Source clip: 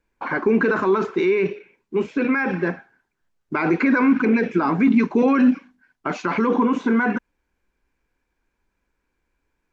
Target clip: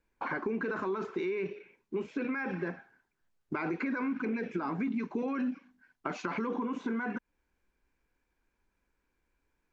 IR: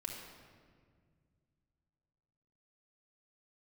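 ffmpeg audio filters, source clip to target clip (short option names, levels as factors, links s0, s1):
-af "acompressor=threshold=0.0398:ratio=4,volume=0.596"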